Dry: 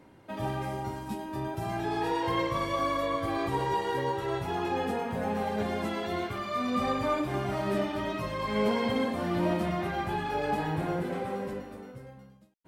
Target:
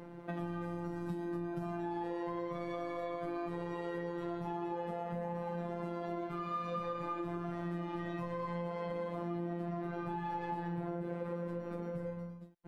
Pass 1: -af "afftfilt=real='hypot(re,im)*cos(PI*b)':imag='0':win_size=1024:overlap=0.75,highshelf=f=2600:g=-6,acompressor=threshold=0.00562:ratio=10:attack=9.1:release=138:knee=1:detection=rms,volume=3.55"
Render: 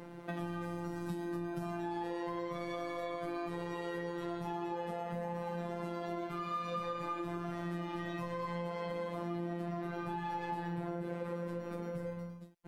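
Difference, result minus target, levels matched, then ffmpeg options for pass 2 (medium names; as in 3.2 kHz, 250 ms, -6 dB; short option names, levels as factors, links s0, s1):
4 kHz band +5.5 dB
-af "afftfilt=real='hypot(re,im)*cos(PI*b)':imag='0':win_size=1024:overlap=0.75,highshelf=f=2600:g=-16.5,acompressor=threshold=0.00562:ratio=10:attack=9.1:release=138:knee=1:detection=rms,volume=3.55"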